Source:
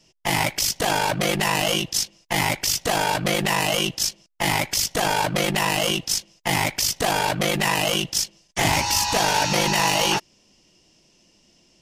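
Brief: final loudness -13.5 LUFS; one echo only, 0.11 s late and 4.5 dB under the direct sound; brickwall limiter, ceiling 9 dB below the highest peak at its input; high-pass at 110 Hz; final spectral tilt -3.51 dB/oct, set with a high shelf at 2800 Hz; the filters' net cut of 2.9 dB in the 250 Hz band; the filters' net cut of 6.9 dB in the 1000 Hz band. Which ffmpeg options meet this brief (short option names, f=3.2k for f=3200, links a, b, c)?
-af "highpass=110,equalizer=f=250:t=o:g=-3.5,equalizer=f=1k:t=o:g=-8,highshelf=f=2.8k:g=-4.5,alimiter=limit=-20.5dB:level=0:latency=1,aecho=1:1:110:0.596,volume=14.5dB"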